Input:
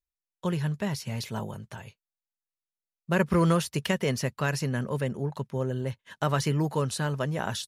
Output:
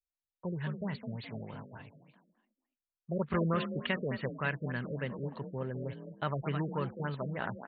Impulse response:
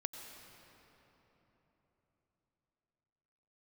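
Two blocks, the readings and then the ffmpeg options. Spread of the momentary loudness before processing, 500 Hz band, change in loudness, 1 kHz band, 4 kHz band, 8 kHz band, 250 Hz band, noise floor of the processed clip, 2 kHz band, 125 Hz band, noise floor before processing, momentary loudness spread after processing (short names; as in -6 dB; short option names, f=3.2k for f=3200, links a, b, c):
11 LU, -7.0 dB, -7.5 dB, -7.0 dB, -10.0 dB, under -40 dB, -7.0 dB, under -85 dBFS, -5.0 dB, -8.0 dB, under -85 dBFS, 12 LU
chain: -filter_complex "[0:a]adynamicequalizer=threshold=0.00562:dfrequency=2000:dqfactor=0.86:tfrequency=2000:tqfactor=0.86:attack=5:release=100:ratio=0.375:range=3.5:mode=boostabove:tftype=bell,asplit=5[a][b][c][d][e];[b]adelay=211,afreqshift=36,volume=-8dB[f];[c]adelay=422,afreqshift=72,volume=-18.2dB[g];[d]adelay=633,afreqshift=108,volume=-28.3dB[h];[e]adelay=844,afreqshift=144,volume=-38.5dB[i];[a][f][g][h][i]amix=inputs=5:normalize=0,afftfilt=real='re*lt(b*sr/1024,590*pow(4700/590,0.5+0.5*sin(2*PI*3.4*pts/sr)))':imag='im*lt(b*sr/1024,590*pow(4700/590,0.5+0.5*sin(2*PI*3.4*pts/sr)))':win_size=1024:overlap=0.75,volume=-8.5dB"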